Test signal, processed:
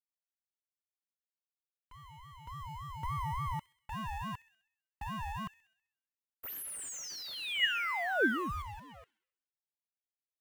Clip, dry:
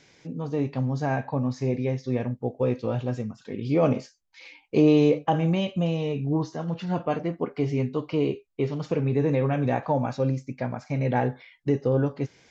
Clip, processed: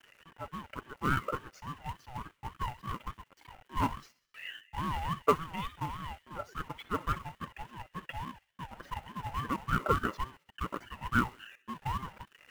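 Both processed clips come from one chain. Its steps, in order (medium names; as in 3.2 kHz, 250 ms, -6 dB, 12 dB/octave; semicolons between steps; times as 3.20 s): resonances exaggerated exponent 2; high-pass 610 Hz 24 dB/octave; companded quantiser 4-bit; resonant high shelf 3.1 kHz -6.5 dB, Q 1.5; small resonant body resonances 960/2400 Hz, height 11 dB, ringing for 30 ms; on a send: feedback echo behind a high-pass 65 ms, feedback 55%, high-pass 1.9 kHz, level -16 dB; on the sum: ring modulator with a swept carrier 510 Hz, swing 30%, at 3.5 Hz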